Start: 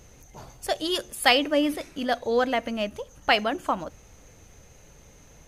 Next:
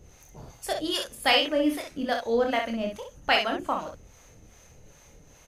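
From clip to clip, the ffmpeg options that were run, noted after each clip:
-filter_complex "[0:a]acrossover=split=580[a][b];[a]aeval=exprs='val(0)*(1-0.7/2+0.7/2*cos(2*PI*2.5*n/s))':c=same[c];[b]aeval=exprs='val(0)*(1-0.7/2-0.7/2*cos(2*PI*2.5*n/s))':c=same[d];[c][d]amix=inputs=2:normalize=0,asplit=2[e][f];[f]aecho=0:1:26|63:0.531|0.531[g];[e][g]amix=inputs=2:normalize=0"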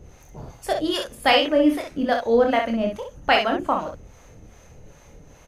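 -af "highshelf=f=2.4k:g=-9,volume=7dB"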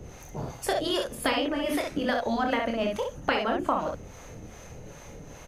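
-filter_complex "[0:a]afftfilt=real='re*lt(hypot(re,im),0.708)':imag='im*lt(hypot(re,im),0.708)':win_size=1024:overlap=0.75,acrossover=split=99|1100[a][b][c];[a]acompressor=threshold=-52dB:ratio=4[d];[b]acompressor=threshold=-31dB:ratio=4[e];[c]acompressor=threshold=-37dB:ratio=4[f];[d][e][f]amix=inputs=3:normalize=0,volume=5dB"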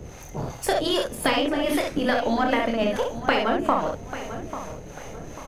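-filter_complex "[0:a]aeval=exprs='if(lt(val(0),0),0.708*val(0),val(0))':c=same,asplit=2[a][b];[b]adelay=843,lowpass=f=2.9k:p=1,volume=-12dB,asplit=2[c][d];[d]adelay=843,lowpass=f=2.9k:p=1,volume=0.38,asplit=2[e][f];[f]adelay=843,lowpass=f=2.9k:p=1,volume=0.38,asplit=2[g][h];[h]adelay=843,lowpass=f=2.9k:p=1,volume=0.38[i];[a][c][e][g][i]amix=inputs=5:normalize=0,volume=5.5dB"

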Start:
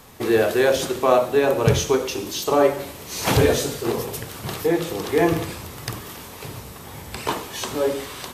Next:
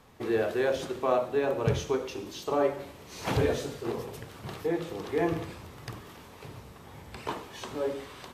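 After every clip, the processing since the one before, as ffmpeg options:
-af "lowpass=f=3k:p=1,volume=-9dB"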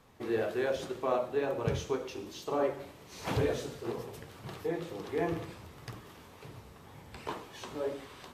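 -af "flanger=delay=6:depth=7.3:regen=-57:speed=2:shape=sinusoidal"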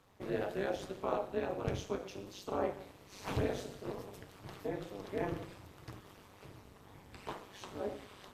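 -af "tremolo=f=200:d=0.889,volume=-1dB"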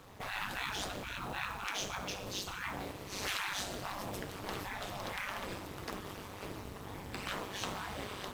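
-af "afftfilt=real='re*lt(hypot(re,im),0.0178)':imag='im*lt(hypot(re,im),0.0178)':win_size=1024:overlap=0.75,acrusher=bits=5:mode=log:mix=0:aa=0.000001,volume=11.5dB"

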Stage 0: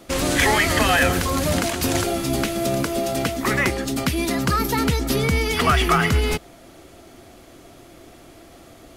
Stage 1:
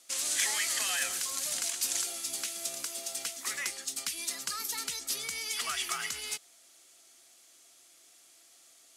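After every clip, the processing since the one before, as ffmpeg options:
-af "bandpass=f=7.8k:t=q:w=1.3:csg=0"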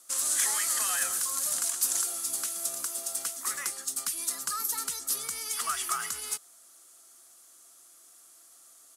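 -af "firequalizer=gain_entry='entry(750,0);entry(1200,7);entry(2200,-7);entry(9500,7)':delay=0.05:min_phase=1"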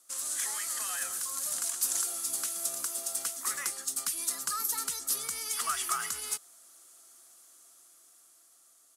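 -af "dynaudnorm=f=370:g=9:m=6dB,volume=-6.5dB"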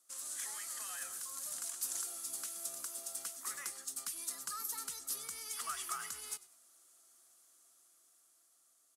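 -filter_complex "[0:a]asplit=4[a][b][c][d];[b]adelay=97,afreqshift=-58,volume=-19dB[e];[c]adelay=194,afreqshift=-116,volume=-28.6dB[f];[d]adelay=291,afreqshift=-174,volume=-38.3dB[g];[a][e][f][g]amix=inputs=4:normalize=0,volume=-9dB"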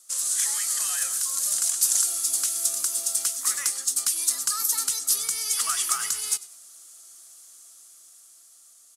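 -af "equalizer=f=6.7k:t=o:w=2.7:g=11,volume=7.5dB"

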